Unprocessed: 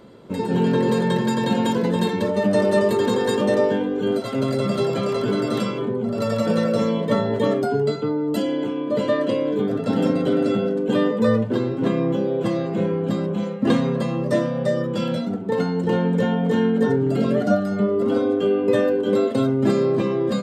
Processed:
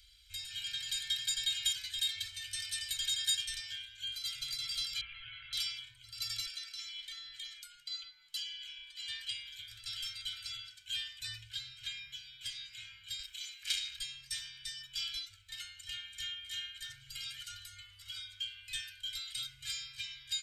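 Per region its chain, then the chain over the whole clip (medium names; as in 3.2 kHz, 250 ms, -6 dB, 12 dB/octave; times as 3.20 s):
5.01–5.53 s: steep low-pass 2.9 kHz 48 dB/octave + hum notches 60/120/180/240/300/360 Hz
6.46–9.08 s: frequency weighting A + compression, threshold -27 dBFS
13.19–13.99 s: tilt EQ +3 dB/octave + transformer saturation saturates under 2.1 kHz
whole clip: inverse Chebyshev band-stop 180–770 Hz, stop band 70 dB; comb 1.3 ms, depth 71%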